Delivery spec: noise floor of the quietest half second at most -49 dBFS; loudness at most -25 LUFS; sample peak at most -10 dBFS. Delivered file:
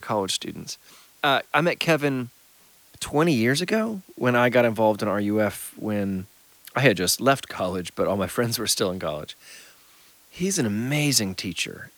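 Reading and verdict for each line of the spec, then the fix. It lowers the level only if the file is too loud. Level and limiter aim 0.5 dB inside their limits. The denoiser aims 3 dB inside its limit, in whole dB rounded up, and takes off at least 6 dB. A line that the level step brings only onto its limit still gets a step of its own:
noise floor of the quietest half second -55 dBFS: OK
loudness -23.5 LUFS: fail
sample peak -4.5 dBFS: fail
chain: gain -2 dB; limiter -10.5 dBFS

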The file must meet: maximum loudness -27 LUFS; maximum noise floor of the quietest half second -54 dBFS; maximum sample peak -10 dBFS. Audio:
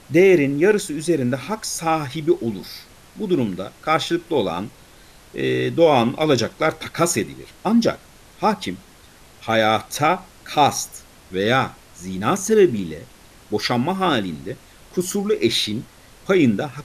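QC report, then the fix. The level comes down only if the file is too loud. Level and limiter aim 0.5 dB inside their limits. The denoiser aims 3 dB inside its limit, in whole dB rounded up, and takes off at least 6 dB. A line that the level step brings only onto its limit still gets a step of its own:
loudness -20.5 LUFS: fail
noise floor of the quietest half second -47 dBFS: fail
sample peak -4.5 dBFS: fail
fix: denoiser 6 dB, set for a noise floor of -47 dBFS; gain -7 dB

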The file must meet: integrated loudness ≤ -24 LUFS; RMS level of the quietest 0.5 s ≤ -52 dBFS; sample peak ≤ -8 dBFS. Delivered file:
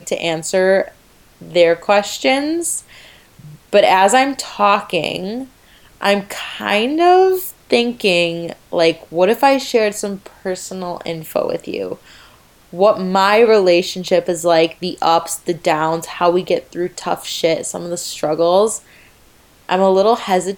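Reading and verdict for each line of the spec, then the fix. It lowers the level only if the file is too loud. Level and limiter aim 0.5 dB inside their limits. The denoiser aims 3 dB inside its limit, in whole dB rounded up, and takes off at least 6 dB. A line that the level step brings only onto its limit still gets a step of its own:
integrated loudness -16.0 LUFS: fail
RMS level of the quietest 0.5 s -49 dBFS: fail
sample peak -1.5 dBFS: fail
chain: gain -8.5 dB

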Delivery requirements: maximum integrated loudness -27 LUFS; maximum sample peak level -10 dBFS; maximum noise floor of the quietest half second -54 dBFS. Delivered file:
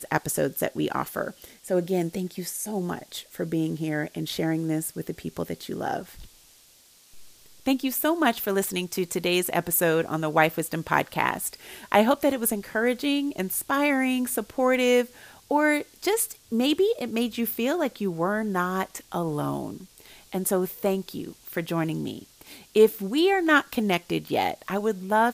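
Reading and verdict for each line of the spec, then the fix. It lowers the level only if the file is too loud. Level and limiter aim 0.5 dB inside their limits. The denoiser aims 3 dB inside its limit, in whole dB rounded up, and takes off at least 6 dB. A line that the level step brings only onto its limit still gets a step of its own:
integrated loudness -26.0 LUFS: fail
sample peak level -4.5 dBFS: fail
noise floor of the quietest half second -56 dBFS: OK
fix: gain -1.5 dB; limiter -10.5 dBFS

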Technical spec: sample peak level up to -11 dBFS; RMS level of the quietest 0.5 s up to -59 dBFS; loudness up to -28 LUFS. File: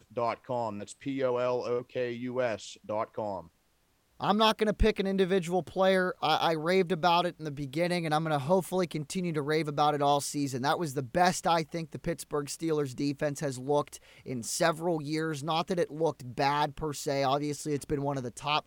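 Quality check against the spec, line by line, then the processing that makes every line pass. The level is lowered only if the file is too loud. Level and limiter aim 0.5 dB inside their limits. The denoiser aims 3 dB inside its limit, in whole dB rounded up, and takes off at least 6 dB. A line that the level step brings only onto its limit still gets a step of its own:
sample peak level -11.5 dBFS: OK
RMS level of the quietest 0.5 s -70 dBFS: OK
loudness -30.0 LUFS: OK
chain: none

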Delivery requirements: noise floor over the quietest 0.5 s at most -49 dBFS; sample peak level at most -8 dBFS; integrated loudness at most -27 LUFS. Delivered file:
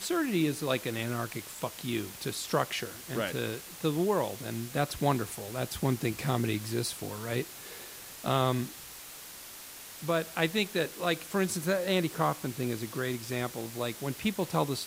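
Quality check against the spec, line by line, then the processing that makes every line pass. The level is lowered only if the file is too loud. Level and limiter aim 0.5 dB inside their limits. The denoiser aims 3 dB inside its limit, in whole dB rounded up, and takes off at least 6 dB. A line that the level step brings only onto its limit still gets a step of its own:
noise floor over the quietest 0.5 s -46 dBFS: fail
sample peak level -12.5 dBFS: OK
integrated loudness -32.0 LUFS: OK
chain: denoiser 6 dB, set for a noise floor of -46 dBFS

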